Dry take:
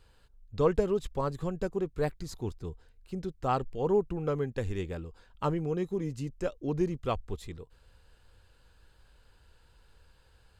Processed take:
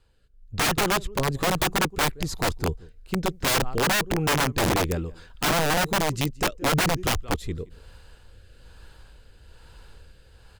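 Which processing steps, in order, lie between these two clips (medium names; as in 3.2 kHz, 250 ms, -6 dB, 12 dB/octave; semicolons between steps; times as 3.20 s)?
dynamic bell 550 Hz, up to -4 dB, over -42 dBFS, Q 3.4; level rider gain up to 13 dB; rotary cabinet horn 1.1 Hz; delay 172 ms -22.5 dB; integer overflow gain 17 dB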